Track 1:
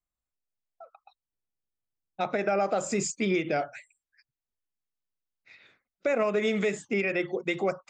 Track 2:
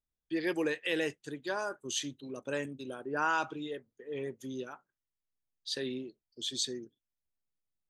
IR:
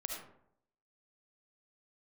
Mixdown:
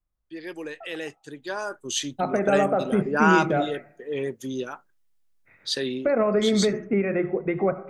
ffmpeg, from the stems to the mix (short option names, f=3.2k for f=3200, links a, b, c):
-filter_complex "[0:a]lowpass=f=1.8k:w=0.5412,lowpass=f=1.8k:w=1.3066,volume=1dB,asplit=2[a][b];[b]volume=-9.5dB[c];[1:a]lowshelf=f=200:g=-11.5,dynaudnorm=f=200:g=17:m=15dB,volume=-4.5dB[d];[2:a]atrim=start_sample=2205[e];[c][e]afir=irnorm=-1:irlink=0[f];[a][d][f]amix=inputs=3:normalize=0,lowshelf=f=180:g=10.5"